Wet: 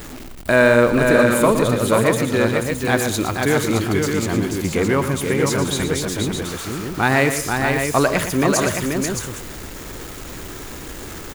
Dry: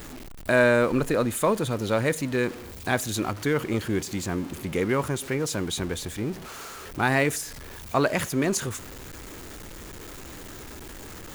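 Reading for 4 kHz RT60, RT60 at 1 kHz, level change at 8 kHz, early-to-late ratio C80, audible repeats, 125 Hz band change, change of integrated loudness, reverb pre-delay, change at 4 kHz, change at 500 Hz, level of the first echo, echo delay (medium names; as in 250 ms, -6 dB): no reverb, no reverb, +8.0 dB, no reverb, 4, +8.0 dB, +7.5 dB, no reverb, +8.0 dB, +8.0 dB, -9.5 dB, 117 ms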